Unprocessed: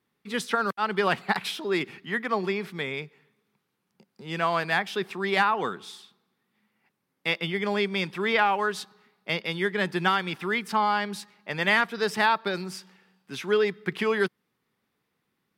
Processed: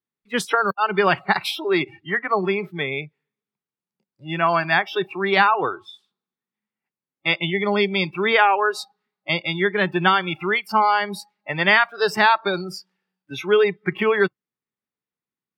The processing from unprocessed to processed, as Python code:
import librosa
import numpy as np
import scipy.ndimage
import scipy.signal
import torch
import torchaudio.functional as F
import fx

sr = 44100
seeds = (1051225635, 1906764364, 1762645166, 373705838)

y = fx.noise_reduce_blind(x, sr, reduce_db=24)
y = y * 10.0 ** (6.5 / 20.0)